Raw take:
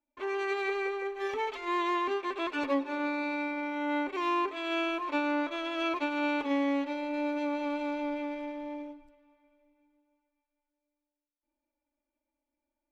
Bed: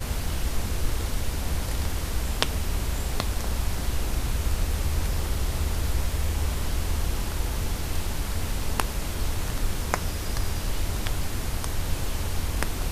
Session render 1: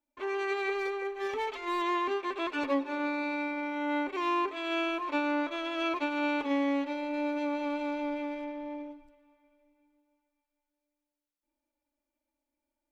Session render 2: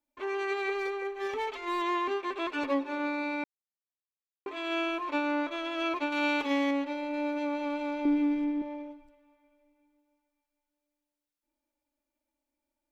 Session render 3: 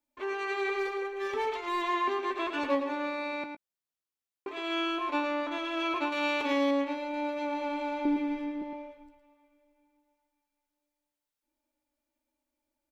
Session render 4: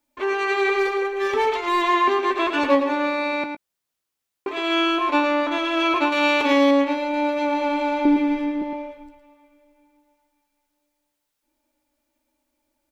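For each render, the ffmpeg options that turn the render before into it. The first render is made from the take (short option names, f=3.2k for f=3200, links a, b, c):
-filter_complex "[0:a]asettb=1/sr,asplit=3[a][b][c];[a]atrim=end=0.784[d];[b]atrim=start=0.78:end=1.82,asetpts=PTS-STARTPTS,afade=t=in:d=0.004:c=qsin,afade=t=out:st=1.036:d=0.004:c=qsin,asoftclip=type=hard:threshold=-27.5dB[e];[c]atrim=start=1.816[f];[d][e]acrossfade=d=0.004:c1=hsin:c2=qsin[g];[g][f]acrossfade=d=0.004:c1=qsin:c2=hsin,asettb=1/sr,asplit=3[h][i][j];[h]atrim=end=8.444[k];[i]atrim=start=8.44:end=8.91,asetpts=PTS-STARTPTS,afade=t=in:d=0.004:c=qsin,afade=t=out:st=0.466:d=0.004:c=qsin,highshelf=f=5.9k:g=-9.5[l];[j]atrim=start=8.906[m];[k][l]acrossfade=d=0.004:c1=hsin:c2=qsin[n];[n][m]acrossfade=d=0.004:c1=qsin:c2=hsin"
-filter_complex "[0:a]asettb=1/sr,asplit=3[a][b][c];[a]atrim=end=6.124[d];[b]atrim=start=6.12:end=6.71,asetpts=PTS-STARTPTS,afade=t=in:d=0.004:c=qsin,afade=t=out:st=0.586:d=0.004:c=qsin,highshelf=f=2.2k:g=9[e];[c]atrim=start=6.706[f];[d][e]acrossfade=d=0.004:c1=hsin:c2=qsin[g];[g][f]acrossfade=d=0.004:c1=qsin:c2=hsin,asettb=1/sr,asplit=3[h][i][j];[h]atrim=end=8.054[k];[i]atrim=start=8.05:end=8.62,asetpts=PTS-STARTPTS,afade=t=in:d=0.004:c=qsin,afade=t=out:st=0.566:d=0.004:c=qsin,lowshelf=f=460:t=q:w=3:g=7[l];[j]atrim=start=8.616[m];[k][l]acrossfade=d=0.004:c1=hsin:c2=qsin[n];[n][m]acrossfade=d=0.004:c1=qsin:c2=hsin,asplit=3[o][p][q];[o]atrim=end=3.44,asetpts=PTS-STARTPTS,afade=t=out:st=3.436:d=0.004:c=hsin[r];[p]atrim=start=3.44:end=4.46,asetpts=PTS-STARTPTS,volume=0[s];[q]atrim=start=4.46,asetpts=PTS-STARTPTS,afade=t=in:d=0.004:c=hsin[t];[r][s][t]concat=n=3:v=0:a=1"
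-filter_complex "[0:a]asplit=2[a][b];[b]adelay=16,volume=-11dB[c];[a][c]amix=inputs=2:normalize=0,asplit=2[d][e];[e]adelay=110.8,volume=-7dB,highshelf=f=4k:g=-2.49[f];[d][f]amix=inputs=2:normalize=0"
-af "volume=10.5dB"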